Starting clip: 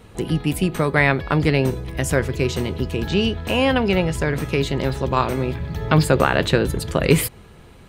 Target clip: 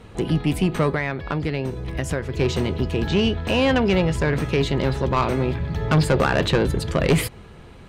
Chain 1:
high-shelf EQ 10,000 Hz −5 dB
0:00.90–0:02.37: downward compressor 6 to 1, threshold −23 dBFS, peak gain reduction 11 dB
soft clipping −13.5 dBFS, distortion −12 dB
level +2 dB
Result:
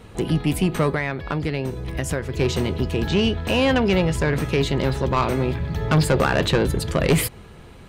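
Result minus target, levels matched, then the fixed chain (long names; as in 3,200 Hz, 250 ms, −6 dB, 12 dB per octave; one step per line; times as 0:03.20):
8,000 Hz band +3.5 dB
high-shelf EQ 10,000 Hz −15.5 dB
0:00.90–0:02.37: downward compressor 6 to 1, threshold −23 dBFS, peak gain reduction 11 dB
soft clipping −13.5 dBFS, distortion −12 dB
level +2 dB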